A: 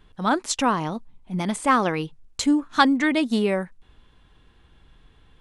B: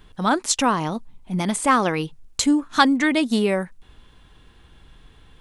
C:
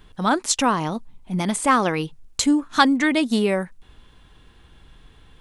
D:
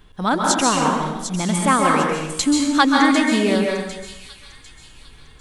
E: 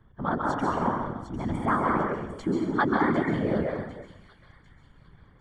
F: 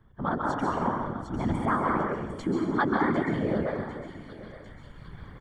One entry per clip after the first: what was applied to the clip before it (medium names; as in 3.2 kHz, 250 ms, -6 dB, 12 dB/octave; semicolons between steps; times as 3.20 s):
treble shelf 5.9 kHz +6.5 dB; in parallel at -3 dB: compression, threshold -30 dBFS, peak gain reduction 17.5 dB
no audible change
feedback echo behind a high-pass 750 ms, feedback 39%, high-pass 3.6 kHz, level -8.5 dB; plate-style reverb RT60 1 s, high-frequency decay 0.8×, pre-delay 120 ms, DRR -0.5 dB
Savitzky-Golay filter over 41 samples; whisper effect; trim -8 dB
recorder AGC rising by 7.3 dB/s; delay 874 ms -17 dB; trim -1.5 dB